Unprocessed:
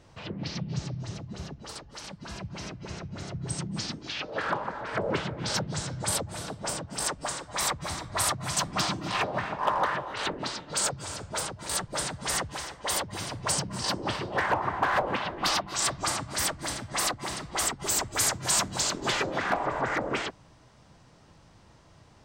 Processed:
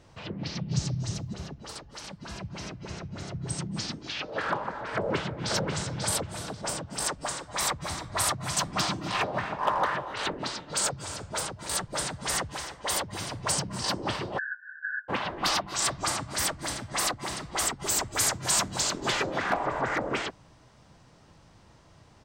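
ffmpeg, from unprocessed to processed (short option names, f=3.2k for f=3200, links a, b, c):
-filter_complex "[0:a]asettb=1/sr,asplit=3[a][b][c];[a]atrim=end=0.714[d];[b]atrim=start=0.71:end=1.34,asetpts=PTS-STARTPTS,afade=t=in:d=0.004:c=qsin,afade=t=out:st=0.626:d=0.004:c=qsin,bass=f=250:g=5,treble=f=4k:g=11[e];[c]atrim=start=1.336[f];[d][e]acrossfade=d=0.004:c1=hsin:c2=qsin[g];[g][f]acrossfade=d=0.004:c1=qsin:c2=hsin,asplit=2[h][i];[i]afade=t=in:st=4.96:d=0.01,afade=t=out:st=5.53:d=0.01,aecho=0:1:540|1080|1620:0.562341|0.112468|0.0224937[j];[h][j]amix=inputs=2:normalize=0,asplit=3[k][l][m];[k]afade=t=out:st=14.37:d=0.02[n];[l]asuperpass=centerf=1600:order=20:qfactor=5,afade=t=in:st=14.37:d=0.02,afade=t=out:st=15.08:d=0.02[o];[m]afade=t=in:st=15.08:d=0.02[p];[n][o][p]amix=inputs=3:normalize=0"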